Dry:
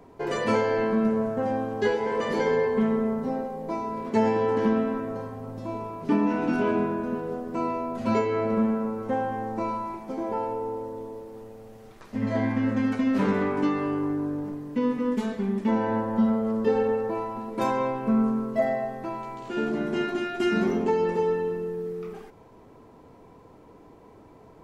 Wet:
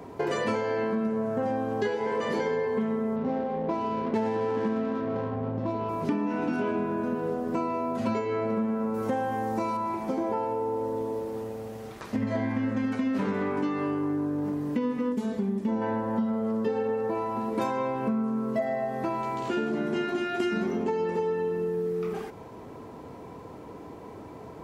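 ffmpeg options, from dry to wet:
-filter_complex "[0:a]asettb=1/sr,asplit=3[a][b][c];[a]atrim=end=3.164[d];[b]atrim=start=3.16:end=5.89,asetpts=PTS-STARTPTS,afade=t=in:d=0.004:c=qsin,afade=t=out:st=2.726:d=0.004:c=qsin,adynamicsmooth=sensitivity=6:basefreq=1.2k[e];[c]atrim=start=5.886[f];[d][e]acrossfade=d=0.004:c1=hsin:c2=qsin[g];[g][f]acrossfade=d=0.004:c1=qsin:c2=hsin,asettb=1/sr,asplit=3[h][i][j];[h]atrim=end=8.944[k];[i]atrim=start=8.94:end=9.77,asetpts=PTS-STARTPTS,afade=t=in:d=0.004:c=qsin,afade=t=out:st=0.826:d=0.004:c=qsin,highshelf=f=4.5k:g=10.5[l];[j]atrim=start=9.766[m];[k][l]acrossfade=d=0.004:c1=hsin:c2=qsin[n];[n][m]acrossfade=d=0.004:c1=qsin:c2=hsin,asettb=1/sr,asplit=3[o][p][q];[o]atrim=end=15.124[r];[p]atrim=start=15.12:end=15.82,asetpts=PTS-STARTPTS,afade=t=in:d=0.004:c=qsin,afade=t=out:st=0.696:d=0.004:c=qsin,equalizer=f=2k:t=o:w=2.4:g=-7.5[s];[q]atrim=start=15.816[t];[r][s]acrossfade=d=0.004:c1=hsin:c2=qsin[u];[u][t]acrossfade=d=0.004:c1=qsin:c2=hsin,highpass=59,acompressor=threshold=-34dB:ratio=6,volume=8dB"

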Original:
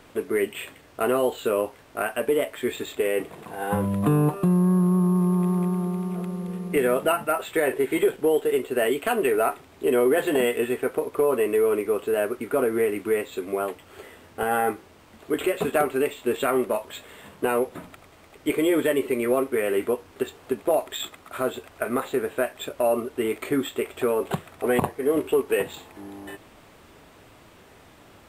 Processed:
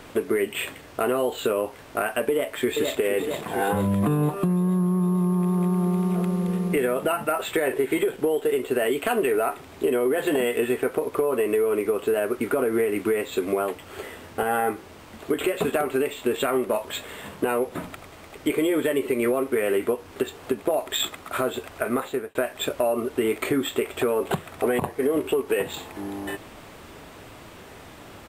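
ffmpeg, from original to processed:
-filter_complex "[0:a]asplit=2[a][b];[b]afade=t=in:st=2.3:d=0.01,afade=t=out:st=2.97:d=0.01,aecho=0:1:460|920|1380|1840|2300|2760|3220|3680|4140:0.375837|0.244294|0.158791|0.103214|0.0670893|0.0436081|0.0283452|0.0184244|0.0119759[c];[a][c]amix=inputs=2:normalize=0,asplit=2[d][e];[d]atrim=end=22.35,asetpts=PTS-STARTPTS,afade=t=out:st=21.85:d=0.5[f];[e]atrim=start=22.35,asetpts=PTS-STARTPTS,afade=t=in:d=0.004:c=hsin[g];[f][g]concat=n=2:v=0:a=1,alimiter=limit=-18dB:level=0:latency=1:release=240,acompressor=threshold=-26dB:ratio=6,volume=7dB"

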